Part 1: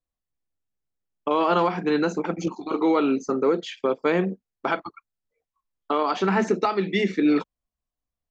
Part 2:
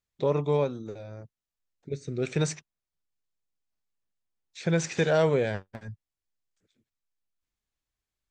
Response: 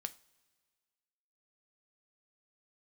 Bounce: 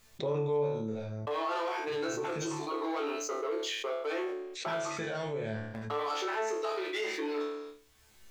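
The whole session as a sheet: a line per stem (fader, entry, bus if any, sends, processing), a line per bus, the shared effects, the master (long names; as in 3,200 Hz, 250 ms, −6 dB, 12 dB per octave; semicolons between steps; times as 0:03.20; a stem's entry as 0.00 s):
−15.5 dB, 0.00 s, no send, high-shelf EQ 4,800 Hz +9 dB; leveller curve on the samples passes 2; Butterworth high-pass 330 Hz 48 dB per octave
−0.5 dB, 0.00 s, no send, automatic ducking −14 dB, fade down 0.75 s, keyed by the first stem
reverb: not used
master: mains-hum notches 50/100/150/200/250/300 Hz; resonators tuned to a chord D2 fifth, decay 0.41 s; envelope flattener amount 70%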